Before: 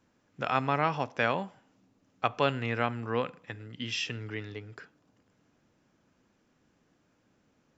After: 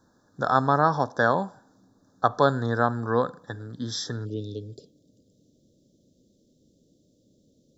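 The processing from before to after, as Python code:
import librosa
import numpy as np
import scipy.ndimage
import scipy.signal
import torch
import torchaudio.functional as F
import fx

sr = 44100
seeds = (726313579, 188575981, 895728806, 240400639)

y = fx.cheby1_bandstop(x, sr, low_hz=fx.steps((0.0, 1700.0), (4.24, 580.0)), high_hz=3600.0, order=4)
y = y * 10.0 ** (7.5 / 20.0)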